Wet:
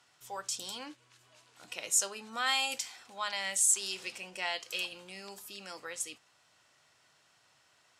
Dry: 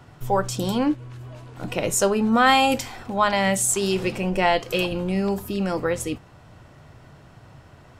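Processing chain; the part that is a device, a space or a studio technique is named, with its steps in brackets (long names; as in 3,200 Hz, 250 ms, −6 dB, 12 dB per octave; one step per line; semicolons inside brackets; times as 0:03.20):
piezo pickup straight into a mixer (low-pass filter 7,600 Hz 12 dB per octave; first difference)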